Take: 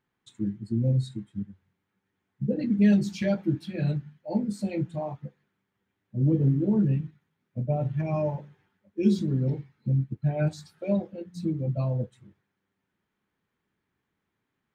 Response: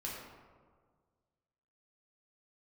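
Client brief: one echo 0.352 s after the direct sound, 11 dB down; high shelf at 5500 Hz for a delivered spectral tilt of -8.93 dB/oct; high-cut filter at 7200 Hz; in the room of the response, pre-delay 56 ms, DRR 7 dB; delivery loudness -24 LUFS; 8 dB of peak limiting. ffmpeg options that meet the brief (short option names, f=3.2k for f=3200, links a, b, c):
-filter_complex "[0:a]lowpass=7.2k,highshelf=f=5.5k:g=7,alimiter=limit=-18.5dB:level=0:latency=1,aecho=1:1:352:0.282,asplit=2[a][b];[1:a]atrim=start_sample=2205,adelay=56[c];[b][c]afir=irnorm=-1:irlink=0,volume=-8dB[d];[a][d]amix=inputs=2:normalize=0,volume=4.5dB"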